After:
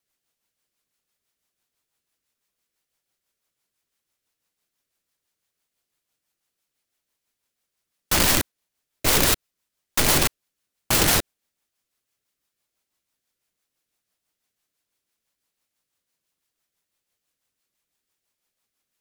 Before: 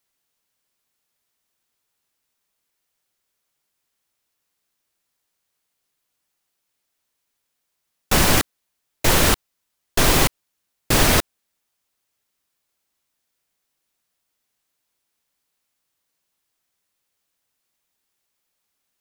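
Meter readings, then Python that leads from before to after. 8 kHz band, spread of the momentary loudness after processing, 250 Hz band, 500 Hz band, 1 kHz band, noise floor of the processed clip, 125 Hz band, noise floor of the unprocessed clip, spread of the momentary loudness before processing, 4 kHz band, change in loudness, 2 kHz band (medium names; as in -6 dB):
0.0 dB, 8 LU, -4.5 dB, -4.5 dB, -4.5 dB, -83 dBFS, -5.5 dB, -77 dBFS, 8 LU, -1.5 dB, -1.5 dB, -3.0 dB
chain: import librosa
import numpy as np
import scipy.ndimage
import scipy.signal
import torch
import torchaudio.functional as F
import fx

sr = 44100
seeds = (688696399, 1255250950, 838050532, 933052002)

y = fx.rotary(x, sr, hz=6.0)
y = (np.mod(10.0 ** (12.5 / 20.0) * y + 1.0, 2.0) - 1.0) / 10.0 ** (12.5 / 20.0)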